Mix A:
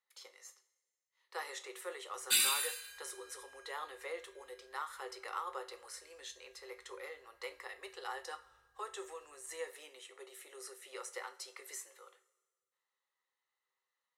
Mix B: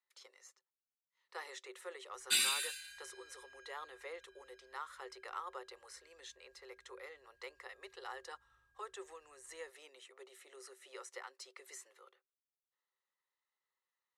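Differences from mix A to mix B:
speech: send off; master: add Bessel low-pass 8400 Hz, order 2

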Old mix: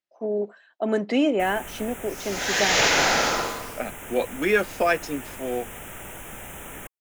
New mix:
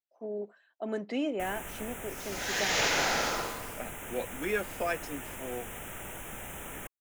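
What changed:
speech -10.5 dB; first sound -3.0 dB; second sound -8.0 dB

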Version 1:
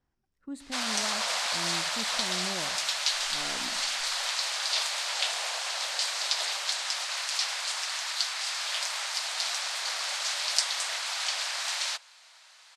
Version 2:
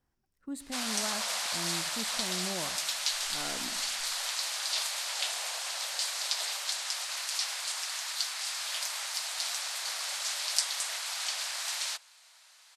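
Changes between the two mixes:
background -5.5 dB; master: remove air absorption 56 m

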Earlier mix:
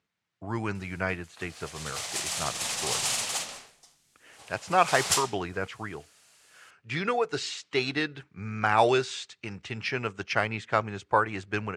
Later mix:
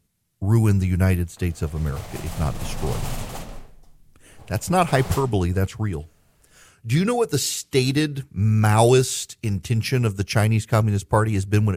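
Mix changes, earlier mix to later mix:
speech: remove LPF 1600 Hz 12 dB/oct; master: remove weighting filter ITU-R 468

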